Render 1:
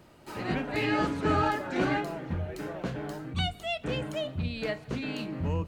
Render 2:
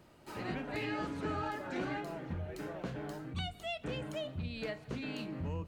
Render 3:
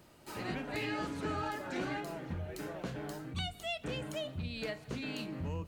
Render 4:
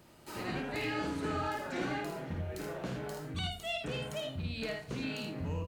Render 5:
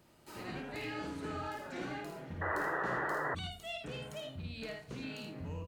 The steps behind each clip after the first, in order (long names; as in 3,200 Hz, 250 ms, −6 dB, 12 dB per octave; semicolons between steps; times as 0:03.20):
downward compressor 3 to 1, threshold −30 dBFS, peak gain reduction 7 dB; level −5 dB
high-shelf EQ 4,400 Hz +8 dB
ambience of single reflections 53 ms −5.5 dB, 79 ms −7 dB
sound drawn into the spectrogram noise, 0:02.41–0:03.35, 290–2,000 Hz −30 dBFS; level −5.5 dB